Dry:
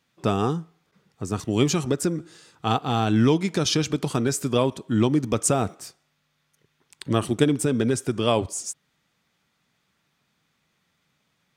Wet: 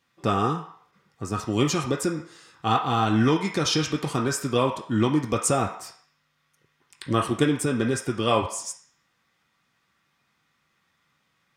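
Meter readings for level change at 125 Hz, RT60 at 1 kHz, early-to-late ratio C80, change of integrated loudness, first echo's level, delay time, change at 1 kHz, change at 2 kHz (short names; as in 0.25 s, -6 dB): -2.0 dB, 0.60 s, 10.5 dB, -1.0 dB, none, none, +3.0 dB, +2.5 dB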